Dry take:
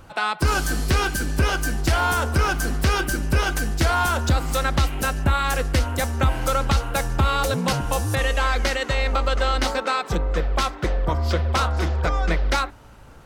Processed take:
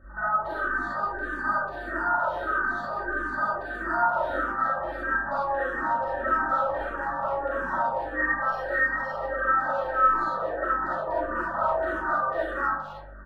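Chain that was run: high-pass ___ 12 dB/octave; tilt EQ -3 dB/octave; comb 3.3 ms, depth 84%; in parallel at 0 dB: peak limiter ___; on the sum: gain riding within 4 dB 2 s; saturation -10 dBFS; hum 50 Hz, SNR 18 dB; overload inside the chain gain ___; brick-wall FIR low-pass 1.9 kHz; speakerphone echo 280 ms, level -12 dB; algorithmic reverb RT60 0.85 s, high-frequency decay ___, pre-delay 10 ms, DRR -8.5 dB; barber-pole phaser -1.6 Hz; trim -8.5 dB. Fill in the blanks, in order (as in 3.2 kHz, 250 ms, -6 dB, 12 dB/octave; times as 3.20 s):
970 Hz, -22.5 dBFS, 17.5 dB, 0.35×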